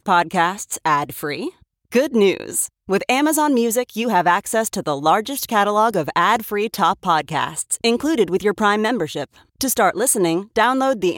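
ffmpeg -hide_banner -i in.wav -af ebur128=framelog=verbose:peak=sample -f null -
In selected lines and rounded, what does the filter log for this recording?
Integrated loudness:
  I:         -18.8 LUFS
  Threshold: -28.9 LUFS
Loudness range:
  LRA:         1.6 LU
  Threshold: -38.9 LUFS
  LRA low:   -19.7 LUFS
  LRA high:  -18.1 LUFS
Sample peak:
  Peak:       -3.9 dBFS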